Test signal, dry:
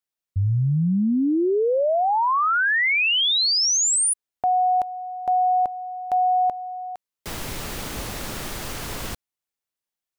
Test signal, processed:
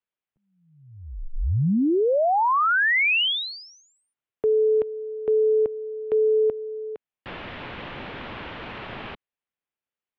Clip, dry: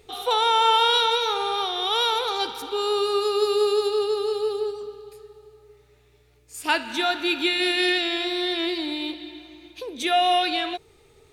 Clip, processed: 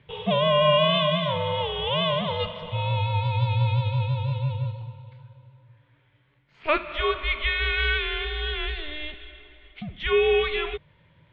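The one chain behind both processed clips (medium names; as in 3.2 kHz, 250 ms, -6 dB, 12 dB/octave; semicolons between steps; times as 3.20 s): high-pass 190 Hz 12 dB/octave; mistuned SSB -300 Hz 350–3500 Hz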